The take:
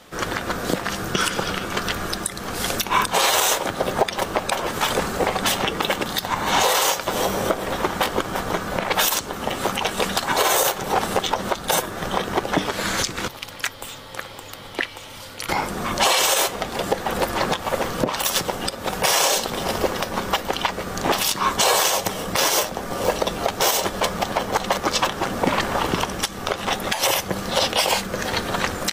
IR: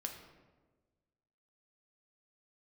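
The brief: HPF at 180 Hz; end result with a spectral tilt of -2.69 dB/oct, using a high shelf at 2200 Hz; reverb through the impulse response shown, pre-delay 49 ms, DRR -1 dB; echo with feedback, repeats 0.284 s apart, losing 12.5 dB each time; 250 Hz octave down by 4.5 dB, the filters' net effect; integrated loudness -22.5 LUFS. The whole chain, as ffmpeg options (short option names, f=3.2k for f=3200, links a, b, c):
-filter_complex "[0:a]highpass=180,equalizer=f=250:t=o:g=-4.5,highshelf=f=2.2k:g=-4,aecho=1:1:284|568|852:0.237|0.0569|0.0137,asplit=2[a][b];[1:a]atrim=start_sample=2205,adelay=49[c];[b][c]afir=irnorm=-1:irlink=0,volume=2.5dB[d];[a][d]amix=inputs=2:normalize=0,volume=-2dB"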